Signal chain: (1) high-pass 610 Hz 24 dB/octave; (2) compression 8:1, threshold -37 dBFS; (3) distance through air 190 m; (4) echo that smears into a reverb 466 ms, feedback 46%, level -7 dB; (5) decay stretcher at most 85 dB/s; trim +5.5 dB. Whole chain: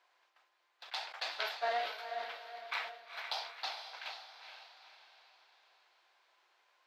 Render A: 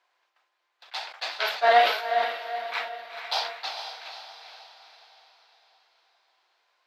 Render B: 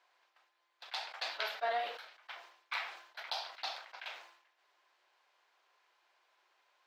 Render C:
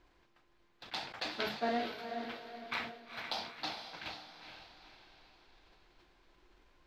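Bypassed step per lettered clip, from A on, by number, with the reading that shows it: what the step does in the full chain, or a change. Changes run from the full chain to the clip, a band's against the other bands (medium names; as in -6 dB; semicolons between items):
2, mean gain reduction 7.0 dB; 4, momentary loudness spread change -5 LU; 1, 500 Hz band +2.0 dB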